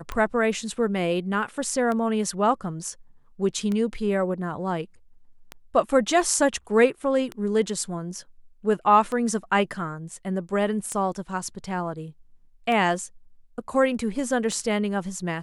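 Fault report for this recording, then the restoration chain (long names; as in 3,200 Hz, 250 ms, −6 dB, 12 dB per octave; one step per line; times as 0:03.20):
scratch tick 33 1/3 rpm −17 dBFS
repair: click removal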